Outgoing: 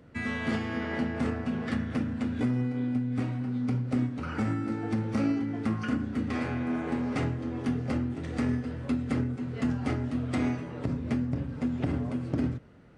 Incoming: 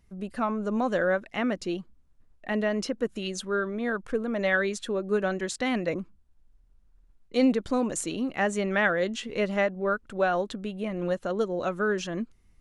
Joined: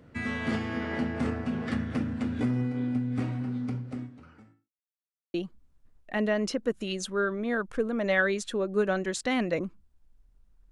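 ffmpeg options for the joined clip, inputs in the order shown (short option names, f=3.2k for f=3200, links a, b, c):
-filter_complex "[0:a]apad=whole_dur=10.71,atrim=end=10.71,asplit=2[a][b];[a]atrim=end=4.71,asetpts=PTS-STARTPTS,afade=t=out:st=3.46:d=1.25:c=qua[c];[b]atrim=start=4.71:end=5.34,asetpts=PTS-STARTPTS,volume=0[d];[1:a]atrim=start=1.69:end=7.06,asetpts=PTS-STARTPTS,afade=t=in:d=0.004:c=hsin[e];[c][d][e]concat=n=3:v=0:a=1"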